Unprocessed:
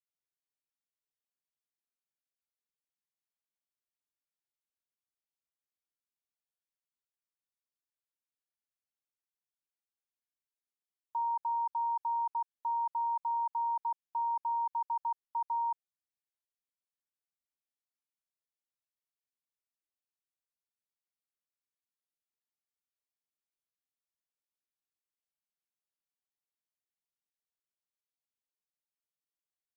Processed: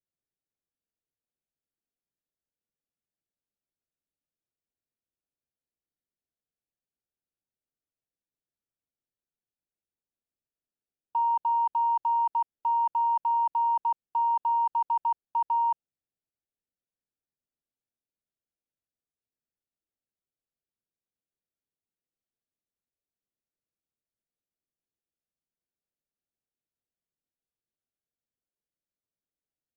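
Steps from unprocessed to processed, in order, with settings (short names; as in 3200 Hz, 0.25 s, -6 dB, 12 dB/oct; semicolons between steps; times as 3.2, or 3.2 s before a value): Wiener smoothing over 41 samples; gain +8 dB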